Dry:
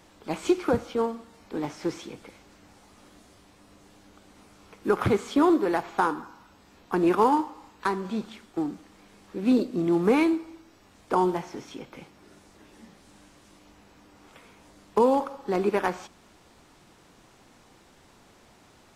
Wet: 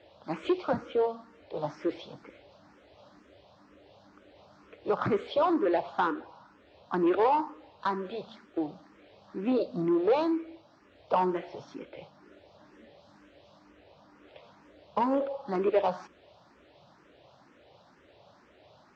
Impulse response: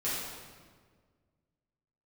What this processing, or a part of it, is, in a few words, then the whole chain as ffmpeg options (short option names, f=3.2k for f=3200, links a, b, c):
barber-pole phaser into a guitar amplifier: -filter_complex "[0:a]asplit=2[a][b];[b]afreqshift=2.1[c];[a][c]amix=inputs=2:normalize=1,asoftclip=type=tanh:threshold=-19.5dB,highpass=77,equalizer=f=220:t=q:w=4:g=-5,equalizer=f=590:t=q:w=4:g=10,equalizer=f=2.2k:t=q:w=4:g=-3,lowpass=f=4.6k:w=0.5412,lowpass=f=4.6k:w=1.3066"